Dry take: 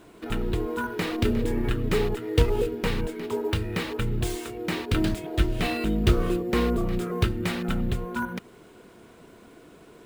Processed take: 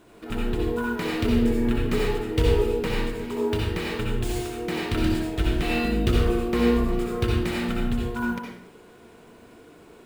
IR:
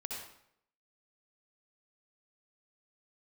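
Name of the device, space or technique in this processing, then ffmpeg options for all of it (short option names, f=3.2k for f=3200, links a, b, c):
bathroom: -filter_complex "[1:a]atrim=start_sample=2205[a];[0:a][a]afir=irnorm=-1:irlink=0,volume=1dB"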